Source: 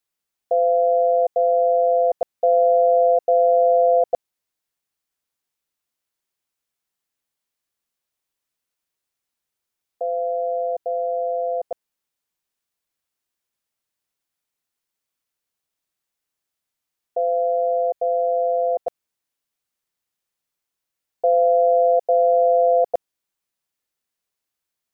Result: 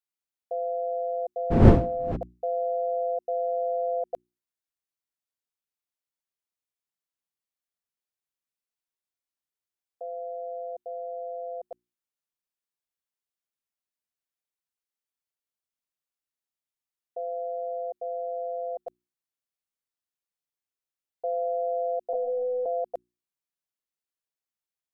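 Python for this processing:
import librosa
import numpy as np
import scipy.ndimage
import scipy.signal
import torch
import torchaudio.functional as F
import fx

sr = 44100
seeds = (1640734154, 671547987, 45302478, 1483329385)

y = fx.dmg_wind(x, sr, seeds[0], corner_hz=260.0, level_db=-12.0, at=(1.5, 2.15), fade=0.02)
y = fx.lpc_monotone(y, sr, seeds[1], pitch_hz=250.0, order=16, at=(22.13, 22.66))
y = fx.hum_notches(y, sr, base_hz=60, count=6)
y = y * 10.0 ** (-12.0 / 20.0)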